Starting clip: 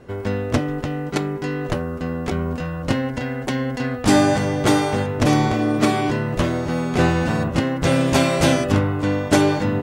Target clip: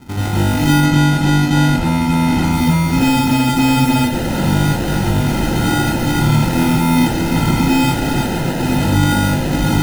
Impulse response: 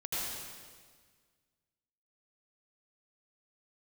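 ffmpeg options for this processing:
-filter_complex "[0:a]aeval=exprs='0.0891*(abs(mod(val(0)/0.0891+3,4)-2)-1)':channel_layout=same,lowshelf=frequency=360:width_type=q:width=3:gain=7.5,acrusher=samples=39:mix=1:aa=0.000001,asettb=1/sr,asplit=3[link_01][link_02][link_03];[link_01]atrim=end=0.724[link_04];[link_02]atrim=start=0.72:end=2.45,asetpts=PTS-STARTPTS,afade=type=in:duration=0.004:curve=qsin,afade=type=out:start_time=1.726:duration=0.004:curve=qsin,adynamicsmooth=sensitivity=3:basefreq=2600[link_05];[link_03]atrim=start=2.446[link_06];[link_04][link_05]acrossfade=duration=0.004:curve1=hsin:curve2=qsin[link_07];[link_07][link_06]acrossfade=duration=0.004:curve1=qsin:curve2=hsin[link_08];[1:a]atrim=start_sample=2205,atrim=end_sample=6174[link_09];[link_08][link_09]afir=irnorm=-1:irlink=0,volume=2.5dB"

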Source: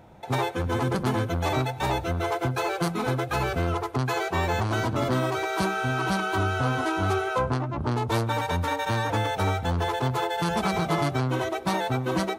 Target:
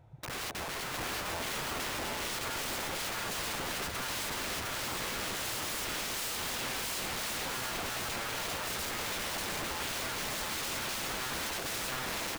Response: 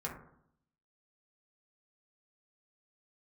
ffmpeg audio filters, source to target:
-filter_complex "[0:a]afwtdn=0.0282,lowshelf=frequency=160:width_type=q:width=3:gain=7,asplit=2[link_01][link_02];[link_02]acompressor=threshold=-25dB:ratio=6,volume=2.5dB[link_03];[link_01][link_03]amix=inputs=2:normalize=0,alimiter=limit=-16.5dB:level=0:latency=1:release=38,aeval=exprs='(mod(28.2*val(0)+1,2)-1)/28.2':channel_layout=same,aecho=1:1:708:0.708,volume=-4dB"

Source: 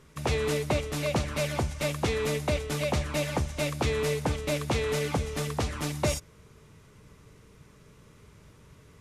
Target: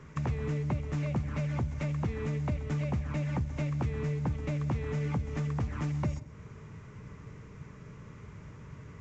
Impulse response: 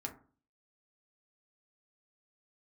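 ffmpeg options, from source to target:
-filter_complex "[0:a]acrossover=split=260[link_01][link_02];[link_02]acompressor=threshold=-42dB:ratio=2.5[link_03];[link_01][link_03]amix=inputs=2:normalize=0,equalizer=frequency=130:width=0.56:gain=9,acompressor=threshold=-30dB:ratio=4,equalizer=frequency=1000:width_type=o:width=1:gain=4,equalizer=frequency=2000:width_type=o:width=1:gain=6,equalizer=frequency=4000:width_type=o:width=1:gain=-8,asplit=2[link_04][link_05];[1:a]atrim=start_sample=2205,adelay=130[link_06];[link_05][link_06]afir=irnorm=-1:irlink=0,volume=-16.5dB[link_07];[link_04][link_07]amix=inputs=2:normalize=0" -ar 16000 -c:a pcm_mulaw

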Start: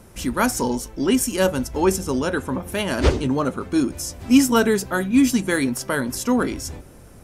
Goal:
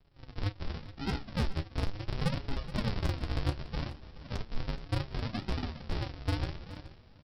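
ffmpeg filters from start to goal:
ffmpeg -i in.wav -filter_complex "[0:a]lowshelf=frequency=360:gain=-8,bandreject=frequency=60:width_type=h:width=6,bandreject=frequency=120:width_type=h:width=6,bandreject=frequency=180:width_type=h:width=6,bandreject=frequency=240:width_type=h:width=6,bandreject=frequency=300:width_type=h:width=6,bandreject=frequency=360:width_type=h:width=6,bandreject=frequency=420:width_type=h:width=6,bandreject=frequency=480:width_type=h:width=6,bandreject=frequency=540:width_type=h:width=6,dynaudnorm=framelen=570:gausssize=3:maxgain=15dB,asplit=3[link_01][link_02][link_03];[link_01]bandpass=frequency=530:width_type=q:width=8,volume=0dB[link_04];[link_02]bandpass=frequency=1840:width_type=q:width=8,volume=-6dB[link_05];[link_03]bandpass=frequency=2480:width_type=q:width=8,volume=-9dB[link_06];[link_04][link_05][link_06]amix=inputs=3:normalize=0,asplit=2[link_07][link_08];[link_08]alimiter=limit=-20.5dB:level=0:latency=1:release=99,volume=-3dB[link_09];[link_07][link_09]amix=inputs=2:normalize=0,acompressor=threshold=-23dB:ratio=8,aresample=11025,acrusher=samples=38:mix=1:aa=0.000001:lfo=1:lforange=38:lforate=0.68,aresample=44100,highshelf=frequency=3600:gain=8,volume=20dB,asoftclip=hard,volume=-20dB,flanger=delay=7.1:depth=7.1:regen=45:speed=0.41:shape=sinusoidal,aecho=1:1:424:0.168" out.wav

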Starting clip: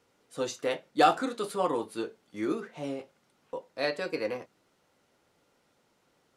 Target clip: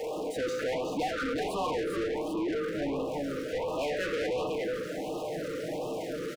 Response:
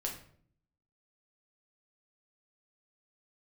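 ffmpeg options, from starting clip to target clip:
-filter_complex "[0:a]aeval=exprs='val(0)+0.5*0.015*sgn(val(0))':channel_layout=same,bandreject=frequency=50:width_type=h:width=6,bandreject=frequency=100:width_type=h:width=6,bandreject=frequency=150:width_type=h:width=6,bandreject=frequency=200:width_type=h:width=6,afwtdn=0.0158,aecho=1:1:6.5:0.78,acompressor=threshold=-28dB:ratio=6,aecho=1:1:139|371:0.126|0.422,asplit=2[link_01][link_02];[1:a]atrim=start_sample=2205,lowpass=2600[link_03];[link_02][link_03]afir=irnorm=-1:irlink=0,volume=-4.5dB[link_04];[link_01][link_04]amix=inputs=2:normalize=0,asplit=2[link_05][link_06];[link_06]highpass=frequency=720:poles=1,volume=30dB,asoftclip=type=tanh:threshold=-17.5dB[link_07];[link_05][link_07]amix=inputs=2:normalize=0,lowpass=frequency=4000:poles=1,volume=-6dB,afftfilt=real='re*(1-between(b*sr/1024,790*pow(1800/790,0.5+0.5*sin(2*PI*1.4*pts/sr))/1.41,790*pow(1800/790,0.5+0.5*sin(2*PI*1.4*pts/sr))*1.41))':imag='im*(1-between(b*sr/1024,790*pow(1800/790,0.5+0.5*sin(2*PI*1.4*pts/sr))/1.41,790*pow(1800/790,0.5+0.5*sin(2*PI*1.4*pts/sr))*1.41))':win_size=1024:overlap=0.75,volume=-7dB"

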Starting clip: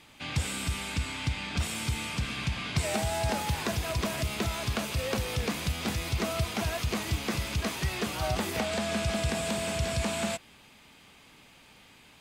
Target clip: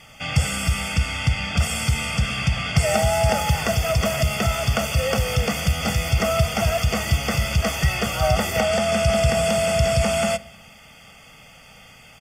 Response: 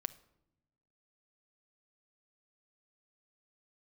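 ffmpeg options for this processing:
-filter_complex "[0:a]asuperstop=centerf=3900:order=20:qfactor=5.7,equalizer=frequency=11000:width_type=o:width=0.21:gain=-2.5,aecho=1:1:1.5:0.73,asplit=2[link_01][link_02];[1:a]atrim=start_sample=2205[link_03];[link_02][link_03]afir=irnorm=-1:irlink=0,volume=7dB[link_04];[link_01][link_04]amix=inputs=2:normalize=0,volume=-2dB"

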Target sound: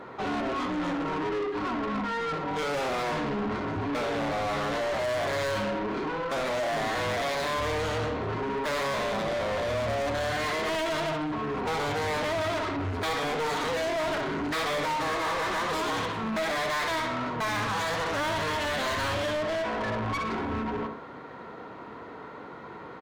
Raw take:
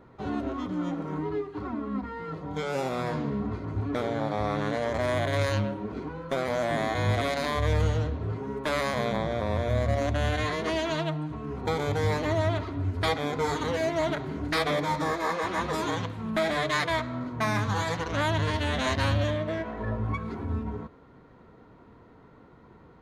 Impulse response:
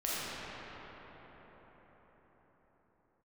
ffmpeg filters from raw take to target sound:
-filter_complex "[0:a]asplit=2[link_01][link_02];[link_02]adelay=63,lowpass=frequency=4400:poles=1,volume=-8dB,asplit=2[link_03][link_04];[link_04]adelay=63,lowpass=frequency=4400:poles=1,volume=0.37,asplit=2[link_05][link_06];[link_06]adelay=63,lowpass=frequency=4400:poles=1,volume=0.37,asplit=2[link_07][link_08];[link_08]adelay=63,lowpass=frequency=4400:poles=1,volume=0.37[link_09];[link_01][link_03][link_05][link_07][link_09]amix=inputs=5:normalize=0,asplit=2[link_10][link_11];[link_11]highpass=frequency=720:poles=1,volume=31dB,asoftclip=type=tanh:threshold=-14dB[link_12];[link_10][link_12]amix=inputs=2:normalize=0,lowpass=frequency=4000:poles=1,volume=-6dB,volume=-8.5dB"

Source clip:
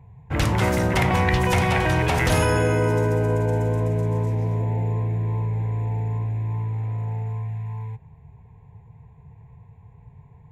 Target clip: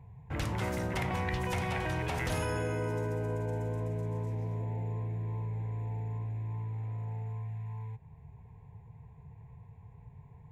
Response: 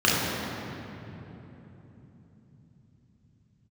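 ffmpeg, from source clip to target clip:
-af "acompressor=threshold=-42dB:ratio=1.5,volume=-4dB"

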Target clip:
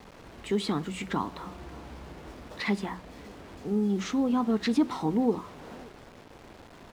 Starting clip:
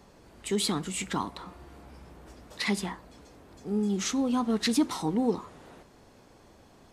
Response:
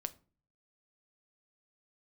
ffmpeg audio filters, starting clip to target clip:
-filter_complex "[0:a]asplit=2[link_01][link_02];[link_02]acompressor=threshold=-42dB:ratio=6,volume=0dB[link_03];[link_01][link_03]amix=inputs=2:normalize=0,highshelf=frequency=4500:gain=-8,asplit=2[link_04][link_05];[link_05]adelay=571.4,volume=-23dB,highshelf=frequency=4000:gain=-12.9[link_06];[link_04][link_06]amix=inputs=2:normalize=0,acrusher=bits=7:mix=0:aa=0.000001,aemphasis=mode=reproduction:type=50kf,bandreject=frequency=60:width_type=h:width=6,bandreject=frequency=120:width_type=h:width=6,bandreject=frequency=180:width_type=h:width=6"

